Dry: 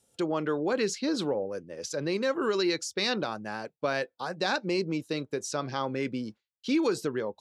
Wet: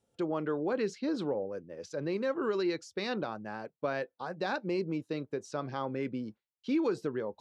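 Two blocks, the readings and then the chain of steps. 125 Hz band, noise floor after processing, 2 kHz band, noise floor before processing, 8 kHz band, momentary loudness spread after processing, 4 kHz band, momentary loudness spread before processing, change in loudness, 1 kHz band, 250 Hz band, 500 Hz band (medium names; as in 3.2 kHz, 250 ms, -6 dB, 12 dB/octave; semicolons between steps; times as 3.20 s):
-3.0 dB, under -85 dBFS, -6.5 dB, -82 dBFS, -15.0 dB, 9 LU, -11.5 dB, 9 LU, -4.0 dB, -4.5 dB, -3.0 dB, -3.5 dB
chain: low-pass 1.6 kHz 6 dB/octave; reverse; upward compressor, threshold -50 dBFS; reverse; trim -3 dB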